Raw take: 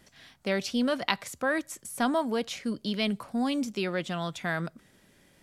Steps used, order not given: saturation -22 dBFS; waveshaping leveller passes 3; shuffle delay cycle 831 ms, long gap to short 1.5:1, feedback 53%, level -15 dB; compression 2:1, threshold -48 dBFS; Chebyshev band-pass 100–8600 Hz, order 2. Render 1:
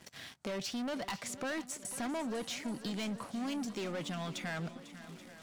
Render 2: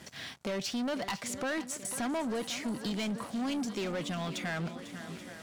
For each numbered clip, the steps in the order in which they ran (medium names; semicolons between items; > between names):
saturation > Chebyshev band-pass > waveshaping leveller > compression > shuffle delay; saturation > Chebyshev band-pass > compression > shuffle delay > waveshaping leveller